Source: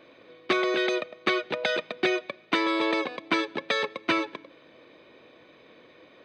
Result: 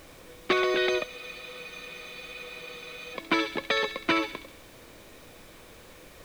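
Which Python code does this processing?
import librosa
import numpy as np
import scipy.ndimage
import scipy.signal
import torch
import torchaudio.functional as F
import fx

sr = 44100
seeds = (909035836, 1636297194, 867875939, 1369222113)

y = fx.echo_wet_highpass(x, sr, ms=67, feedback_pct=52, hz=2400.0, wet_db=-6.5)
y = fx.dmg_noise_colour(y, sr, seeds[0], colour='pink', level_db=-52.0)
y = fx.spec_freeze(y, sr, seeds[1], at_s=1.08, hold_s=2.06)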